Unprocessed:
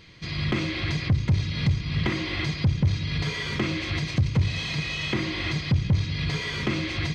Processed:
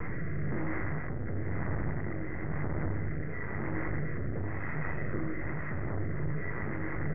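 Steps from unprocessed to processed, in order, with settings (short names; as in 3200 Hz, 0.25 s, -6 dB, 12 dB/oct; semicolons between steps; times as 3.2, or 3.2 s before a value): infinite clipping; outdoor echo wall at 120 m, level -7 dB; half-wave rectifier; Chebyshev low-pass 2000 Hz, order 6; vocal rider 0.5 s; rotary speaker horn 1 Hz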